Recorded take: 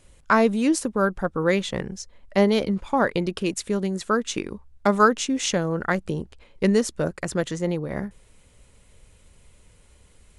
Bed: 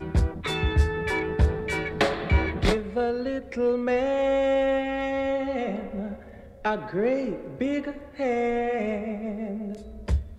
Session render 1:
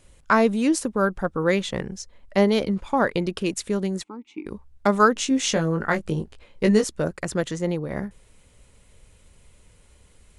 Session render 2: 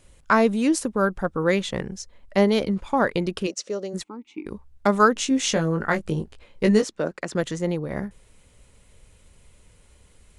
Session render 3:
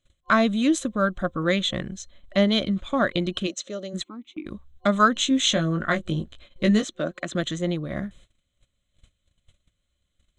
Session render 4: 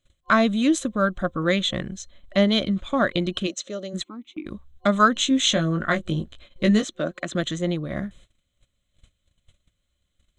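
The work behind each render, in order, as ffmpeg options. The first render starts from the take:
-filter_complex "[0:a]asplit=3[a][b][c];[a]afade=t=out:st=4.02:d=0.02[d];[b]asplit=3[e][f][g];[e]bandpass=f=300:t=q:w=8,volume=0dB[h];[f]bandpass=f=870:t=q:w=8,volume=-6dB[i];[g]bandpass=f=2.24k:t=q:w=8,volume=-9dB[j];[h][i][j]amix=inputs=3:normalize=0,afade=t=in:st=4.02:d=0.02,afade=t=out:st=4.45:d=0.02[k];[c]afade=t=in:st=4.45:d=0.02[l];[d][k][l]amix=inputs=3:normalize=0,asettb=1/sr,asplit=3[m][n][o];[m]atrim=end=5.144[p];[n]atrim=start=5.14:end=6.84,asetpts=PTS-STARTPTS,afade=t=in:d=0.004:c=qsin,afade=t=out:st=1.696:d=0.004:c=qsin,asplit=2[q][r];[r]adelay=19,volume=-5dB[s];[q][s]amix=inputs=2:normalize=0,atrim=end_sample=74970[t];[o]atrim=start=6.836[u];[p][t]acrossfade=d=0.004:c1=hsin:c2=qsin[v];[v][u]acrossfade=d=0.004:c1=qsin:c2=hsin"
-filter_complex "[0:a]asplit=3[a][b][c];[a]afade=t=out:st=3.46:d=0.02[d];[b]highpass=410,equalizer=f=540:t=q:w=4:g=8,equalizer=f=930:t=q:w=4:g=-10,equalizer=f=1.6k:t=q:w=4:g=-8,equalizer=f=2.3k:t=q:w=4:g=-8,equalizer=f=3.5k:t=q:w=4:g=-7,equalizer=f=5.8k:t=q:w=4:g=7,lowpass=f=6.6k:w=0.5412,lowpass=f=6.6k:w=1.3066,afade=t=in:st=3.46:d=0.02,afade=t=out:st=3.93:d=0.02[e];[c]afade=t=in:st=3.93:d=0.02[f];[d][e][f]amix=inputs=3:normalize=0,asettb=1/sr,asplit=3[g][h][i];[g]atrim=end=6.824[j];[h]atrim=start=6.82:end=7.35,asetpts=PTS-STARTPTS,afade=t=in:d=0.004:c=qsin,afade=t=out:st=0.526:d=0.004:c=qsin,acrossover=split=180 7100:gain=0.126 1 0.2[k][l][m];[k][l][m]amix=inputs=3:normalize=0[n];[i]atrim=start=7.346[o];[j][n]acrossfade=d=0.004:c1=hsin:c2=qsin[p];[p][o]acrossfade=d=0.004:c1=qsin:c2=hsin"
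-af "agate=range=-21dB:threshold=-48dB:ratio=16:detection=peak,superequalizer=7b=0.355:9b=0.316:13b=2.51:14b=0.355:16b=0.316"
-af "volume=1dB"

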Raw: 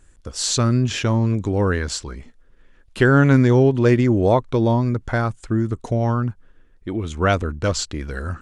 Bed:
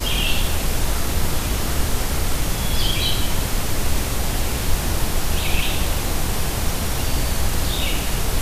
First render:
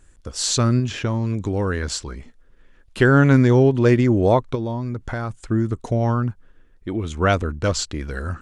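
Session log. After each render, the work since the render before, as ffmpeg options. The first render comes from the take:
-filter_complex "[0:a]asettb=1/sr,asplit=3[a][b][c];[a]atrim=end=0.794[d];[b]atrim=start=0.79:end=1.83,asetpts=PTS-STARTPTS,afade=t=in:d=0.004:c=qsin,afade=t=out:st=1.036:d=0.004:c=qsin,acrossover=split=1900|4100[e][f][g];[e]acompressor=threshold=-19dB:ratio=4[h];[f]acompressor=threshold=-36dB:ratio=4[i];[g]acompressor=threshold=-42dB:ratio=4[j];[h][i][j]amix=inputs=3:normalize=0[k];[c]atrim=start=1.826[l];[d][k]acrossfade=d=0.004:c1=hsin:c2=qsin[m];[m][l]acrossfade=d=0.004:c1=qsin:c2=hsin,asplit=3[n][o][p];[n]afade=t=out:st=4.54:d=0.02[q];[o]acompressor=threshold=-22dB:ratio=6:attack=3.2:release=140:knee=1:detection=peak,afade=t=in:st=4.54:d=0.02,afade=t=out:st=5.42:d=0.02[r];[p]afade=t=in:st=5.42:d=0.02[s];[q][r][s]amix=inputs=3:normalize=0"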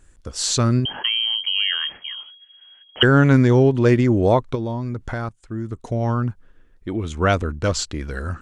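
-filter_complex "[0:a]asettb=1/sr,asplit=3[a][b][c];[a]atrim=end=0.854[d];[b]atrim=start=0.85:end=3.03,asetpts=PTS-STARTPTS,afade=t=in:d=0.004:c=qsin,afade=t=out:st=2.176:d=0.004:c=qsin,lowpass=f=2.8k:t=q:w=0.5098,lowpass=f=2.8k:t=q:w=0.6013,lowpass=f=2.8k:t=q:w=0.9,lowpass=f=2.8k:t=q:w=2.563,afreqshift=-3300[e];[c]atrim=start=3.026[f];[d][e]acrossfade=d=0.004:c1=hsin:c2=qsin[g];[g][f]acrossfade=d=0.004:c1=qsin:c2=hsin,asplit=2[h][i];[h]atrim=end=5.29,asetpts=PTS-STARTPTS,afade=t=out:st=5.286:d=0.004:c=hsin:silence=0.141254[j];[i]atrim=start=5.29,asetpts=PTS-STARTPTS,afade=t=in:d=0.95:silence=0.141254[k];[j][k]concat=n=2:v=0:a=1"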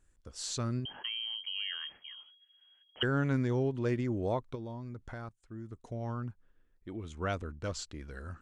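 -af "volume=-16dB"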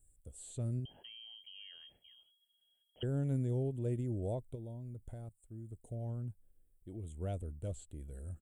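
-filter_complex "[0:a]acrossover=split=4200[a][b];[b]acompressor=threshold=-56dB:ratio=4:attack=1:release=60[c];[a][c]amix=inputs=2:normalize=0,firequalizer=gain_entry='entry(100,0);entry(230,-7);entry(640,-6);entry(1100,-26);entry(3300,-12);entry(5200,-27);entry(8000,10)':delay=0.05:min_phase=1"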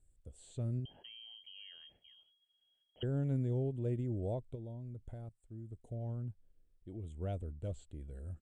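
-af "lowpass=5.2k"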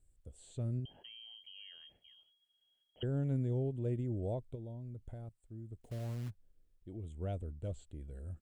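-filter_complex "[0:a]asplit=3[a][b][c];[a]afade=t=out:st=5.8:d=0.02[d];[b]acrusher=bits=4:mode=log:mix=0:aa=0.000001,afade=t=in:st=5.8:d=0.02,afade=t=out:st=6.29:d=0.02[e];[c]afade=t=in:st=6.29:d=0.02[f];[d][e][f]amix=inputs=3:normalize=0"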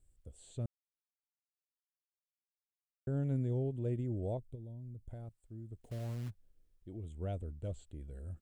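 -filter_complex "[0:a]asettb=1/sr,asplit=3[a][b][c];[a]atrim=end=4.374[d];[b]atrim=start=4.37:end=5.11,asetpts=PTS-STARTPTS,afade=t=in:d=0.004:c=qsin,afade=t=out:st=0.736:d=0.004:c=qsin,equalizer=f=1.4k:w=0.33:g=-12[e];[c]atrim=start=5.106[f];[d][e]acrossfade=d=0.004:c1=hsin:c2=qsin[g];[g][f]acrossfade=d=0.004:c1=qsin:c2=hsin,asplit=3[h][i][j];[h]atrim=end=0.66,asetpts=PTS-STARTPTS,afade=t=out:st=0.656:d=0.004:c=hsin[k];[i]atrim=start=0.66:end=3.07,asetpts=PTS-STARTPTS,volume=0[l];[j]atrim=start=3.07,asetpts=PTS-STARTPTS,afade=t=in:d=0.004:c=hsin[m];[k][l][m]concat=n=3:v=0:a=1"

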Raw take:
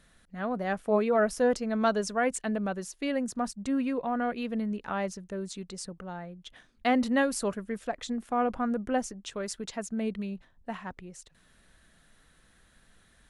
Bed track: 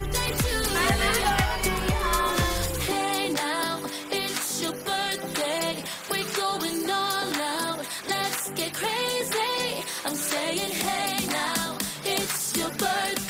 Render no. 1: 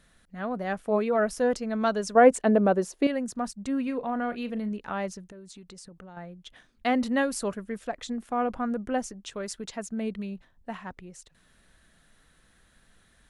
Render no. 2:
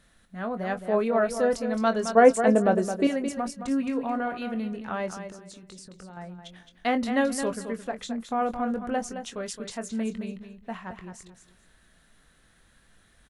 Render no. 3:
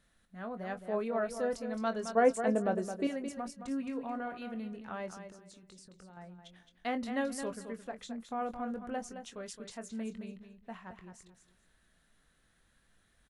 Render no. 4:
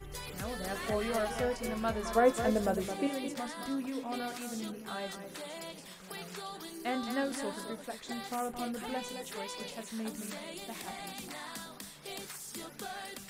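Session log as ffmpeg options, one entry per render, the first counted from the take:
-filter_complex "[0:a]asettb=1/sr,asplit=3[a][b][c];[a]atrim=end=2.154[d];[b]atrim=start=2.15:end=3.07,asetpts=PTS-STARTPTS,afade=t=in:d=0.004:c=qsin,afade=t=out:st=0.916:d=0.004:c=qsin,equalizer=f=460:w=0.46:g=13[e];[c]atrim=start=3.066[f];[d][e]acrossfade=d=0.004:c1=hsin:c2=qsin[g];[g][f]acrossfade=d=0.004:c1=qsin:c2=hsin,asettb=1/sr,asplit=3[h][i][j];[h]atrim=end=3.834[k];[i]atrim=start=3.83:end=4.69,asetpts=PTS-STARTPTS,afade=t=in:d=0.004:c=qsin,afade=t=out:st=0.856:d=0.004:c=qsin,asplit=2[l][m];[m]adelay=38,volume=-13.5dB[n];[l][n]amix=inputs=2:normalize=0,atrim=end_sample=37926[o];[j]atrim=start=4.686[p];[k][o]acrossfade=d=0.004:c1=hsin:c2=qsin[q];[q][p]acrossfade=d=0.004:c1=qsin:c2=hsin,asettb=1/sr,asplit=3[r][s][t];[r]atrim=end=5.264[u];[s]atrim=start=5.26:end=6.17,asetpts=PTS-STARTPTS,afade=t=in:d=0.004:c=qsin,afade=t=out:st=0.906:d=0.004:c=qsin,acompressor=threshold=-42dB:ratio=16:attack=3.2:release=140:knee=1:detection=peak[v];[t]atrim=start=6.166[w];[u][v]acrossfade=d=0.004:c1=hsin:c2=qsin[x];[x][w]acrossfade=d=0.004:c1=qsin:c2=hsin"
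-filter_complex "[0:a]asplit=2[a][b];[b]adelay=22,volume=-9.5dB[c];[a][c]amix=inputs=2:normalize=0,aecho=1:1:217|434|651:0.355|0.0745|0.0156"
-af "volume=-9.5dB"
-filter_complex "[1:a]volume=-16.5dB[a];[0:a][a]amix=inputs=2:normalize=0"

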